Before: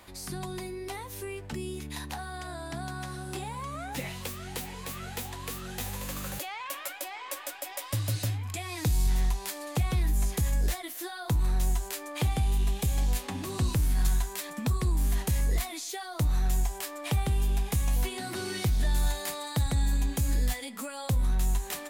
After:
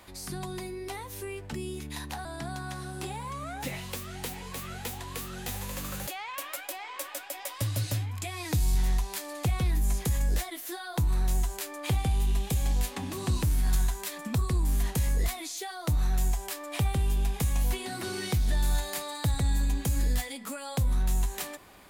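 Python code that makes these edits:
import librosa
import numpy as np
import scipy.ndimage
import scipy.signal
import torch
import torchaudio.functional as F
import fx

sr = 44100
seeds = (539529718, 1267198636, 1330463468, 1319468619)

y = fx.edit(x, sr, fx.cut(start_s=2.25, length_s=0.32), tone=tone)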